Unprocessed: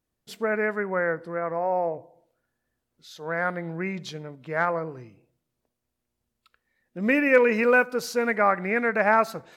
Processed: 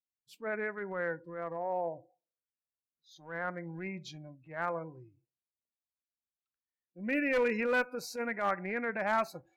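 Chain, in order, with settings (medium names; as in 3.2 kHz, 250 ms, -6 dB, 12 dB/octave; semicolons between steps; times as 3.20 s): spectral noise reduction 22 dB; one-sided clip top -17 dBFS, bottom -9.5 dBFS; transient shaper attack -8 dB, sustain -1 dB; trim -8 dB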